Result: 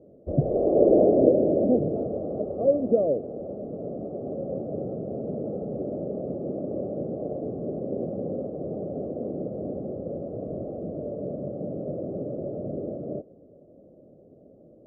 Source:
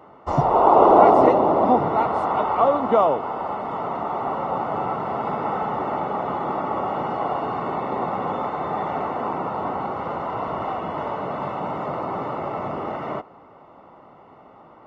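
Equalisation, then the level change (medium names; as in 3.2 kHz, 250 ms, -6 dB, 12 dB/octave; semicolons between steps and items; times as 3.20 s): elliptic low-pass 580 Hz, stop band 40 dB; 0.0 dB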